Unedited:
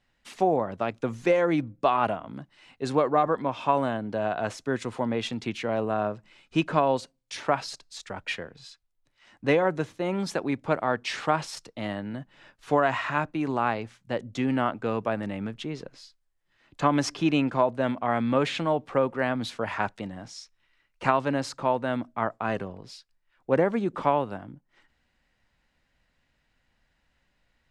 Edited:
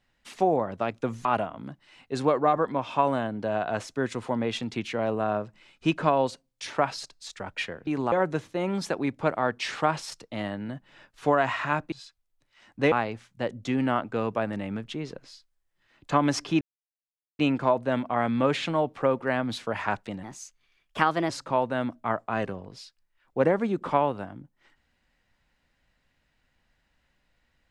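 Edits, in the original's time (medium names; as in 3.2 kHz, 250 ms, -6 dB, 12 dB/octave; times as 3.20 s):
1.25–1.95 s: delete
8.57–9.57 s: swap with 13.37–13.62 s
17.31 s: insert silence 0.78 s
20.15–21.42 s: speed 119%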